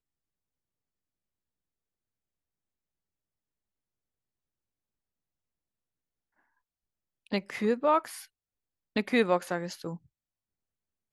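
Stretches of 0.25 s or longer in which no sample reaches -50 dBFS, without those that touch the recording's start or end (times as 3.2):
8.26–8.96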